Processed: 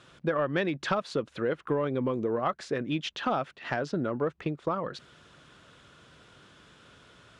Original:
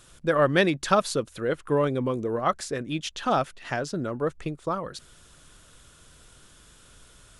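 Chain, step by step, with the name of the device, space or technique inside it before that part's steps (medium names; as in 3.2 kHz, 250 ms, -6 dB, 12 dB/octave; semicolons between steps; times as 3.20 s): AM radio (band-pass 120–3400 Hz; compression 5:1, threshold -27 dBFS, peak gain reduction 11 dB; saturation -16 dBFS, distortion -27 dB); trim +2.5 dB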